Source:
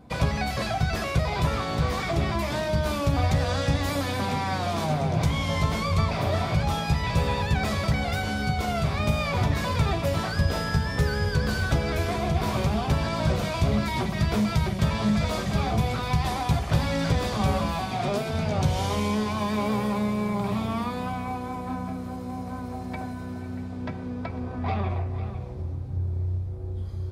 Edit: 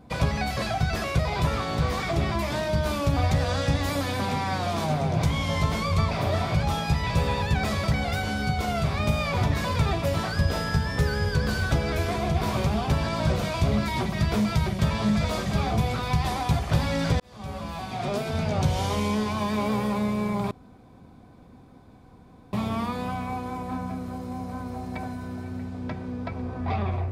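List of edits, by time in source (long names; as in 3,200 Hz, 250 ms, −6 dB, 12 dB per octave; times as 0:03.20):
0:17.20–0:18.31: fade in
0:20.51: splice in room tone 2.02 s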